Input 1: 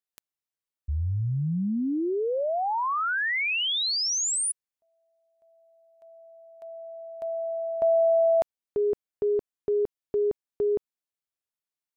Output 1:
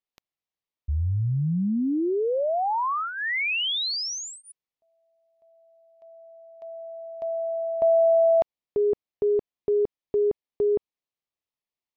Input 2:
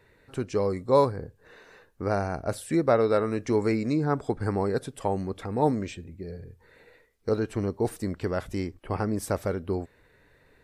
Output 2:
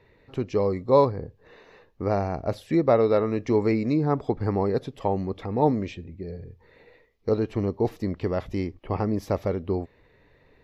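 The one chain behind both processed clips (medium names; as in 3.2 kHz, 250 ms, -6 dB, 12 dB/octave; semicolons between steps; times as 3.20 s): boxcar filter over 5 samples; peaking EQ 1.5 kHz -11 dB 0.28 oct; trim +2.5 dB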